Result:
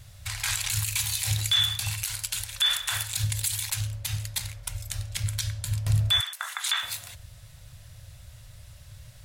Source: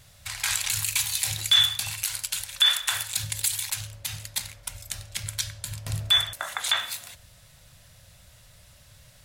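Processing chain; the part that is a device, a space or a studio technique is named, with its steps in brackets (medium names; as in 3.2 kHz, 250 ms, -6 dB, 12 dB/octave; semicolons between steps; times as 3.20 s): 6.20–6.83 s: high-pass 940 Hz 24 dB/octave; car stereo with a boomy subwoofer (resonant low shelf 150 Hz +7.5 dB, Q 1.5; peak limiter -14.5 dBFS, peak gain reduction 6 dB)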